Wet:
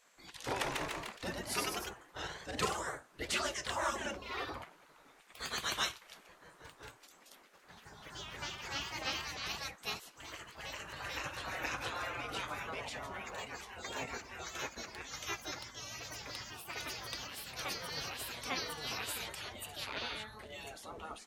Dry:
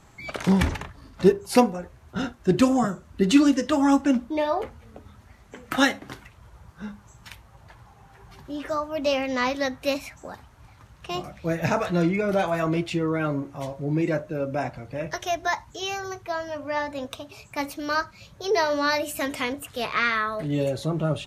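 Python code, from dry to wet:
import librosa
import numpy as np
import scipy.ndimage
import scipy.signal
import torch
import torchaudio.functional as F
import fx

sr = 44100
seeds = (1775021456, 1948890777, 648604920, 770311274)

y = fx.echo_pitch(x, sr, ms=181, semitones=1, count=3, db_per_echo=-3.0)
y = fx.spec_gate(y, sr, threshold_db=-15, keep='weak')
y = y * 10.0 ** (-7.0 / 20.0)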